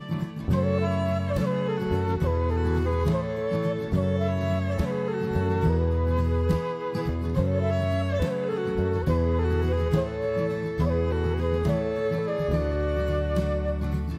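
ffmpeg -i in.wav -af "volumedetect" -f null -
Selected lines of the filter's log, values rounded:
mean_volume: -24.9 dB
max_volume: -11.8 dB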